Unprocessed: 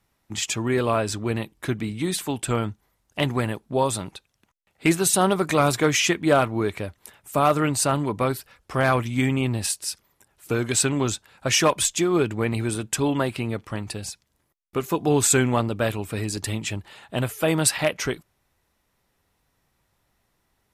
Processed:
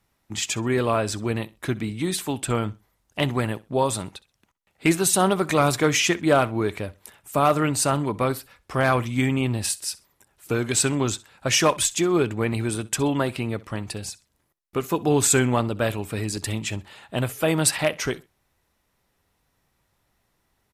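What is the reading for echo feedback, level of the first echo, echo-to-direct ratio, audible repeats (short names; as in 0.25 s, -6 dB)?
24%, -21.0 dB, -21.0 dB, 2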